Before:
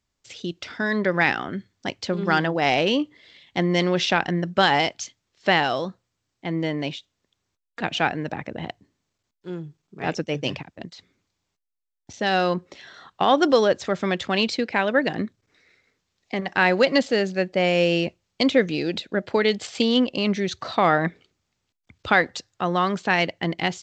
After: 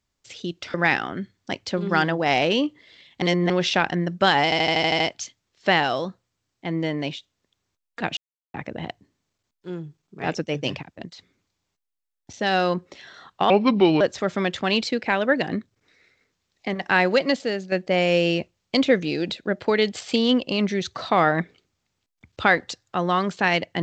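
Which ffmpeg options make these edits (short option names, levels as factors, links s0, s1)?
-filter_complex "[0:a]asplit=16[s0][s1][s2][s3][s4][s5][s6][s7][s8][s9][s10][s11][s12][s13][s14][s15];[s0]atrim=end=0.742[s16];[s1]atrim=start=1.098:end=3.582[s17];[s2]atrim=start=3.578:end=3.862,asetpts=PTS-STARTPTS,areverse[s18];[s3]atrim=start=3.858:end=4.882[s19];[s4]atrim=start=4.798:end=4.882[s20];[s5]atrim=start=4.798:end=4.882[s21];[s6]atrim=start=4.798:end=4.882[s22];[s7]atrim=start=4.798:end=4.882[s23];[s8]atrim=start=4.798:end=4.882[s24];[s9]atrim=start=4.798:end=4.882[s25];[s10]atrim=start=4.798:end=7.97,asetpts=PTS-STARTPTS,afade=t=out:st=3.168:d=0.004:c=hsin[s26];[s11]atrim=start=7.97:end=8.34,asetpts=PTS-STARTPTS,volume=0[s27];[s12]atrim=start=8.34:end=13.304,asetpts=PTS-STARTPTS,afade=t=in:d=0.004:c=hsin[s28];[s13]atrim=start=13.3:end=13.67,asetpts=PTS-STARTPTS,asetrate=32193,aresample=44100,atrim=end_sample=22352,asetpts=PTS-STARTPTS[s29];[s14]atrim=start=13.666:end=17.38,asetpts=PTS-STARTPTS,afade=t=out:st=2.974:d=0.74:silence=0.446684[s30];[s15]atrim=start=17.38,asetpts=PTS-STARTPTS,afade=t=in:d=0.004:c=hsin:silence=0.446684[s31];[s16][s17]acrossfade=d=0.004:c1=hsin:c2=hsin[s32];[s32][s18]acrossfade=d=0.004:c1=hsin:c2=hsin[s33];[s33][s19]acrossfade=d=0.004:c1=hsin:c2=hsin[s34];[s34][s20]acrossfade=d=0.004:c1=hsin:c2=hsin[s35];[s35][s21]acrossfade=d=0.004:c1=hsin:c2=hsin[s36];[s36][s22]acrossfade=d=0.004:c1=hsin:c2=hsin[s37];[s37][s23]acrossfade=d=0.004:c1=hsin:c2=hsin[s38];[s38][s24]acrossfade=d=0.004:c1=hsin:c2=hsin[s39];[s39][s25]acrossfade=d=0.004:c1=hsin:c2=hsin[s40];[s26][s27][s28]concat=n=3:v=0:a=1[s41];[s40][s41]acrossfade=d=0.004:c1=hsin:c2=hsin[s42];[s42][s29]acrossfade=d=0.004:c1=hsin:c2=hsin[s43];[s30][s31]concat=n=2:v=0:a=1[s44];[s43][s44]acrossfade=d=0.004:c1=hsin:c2=hsin"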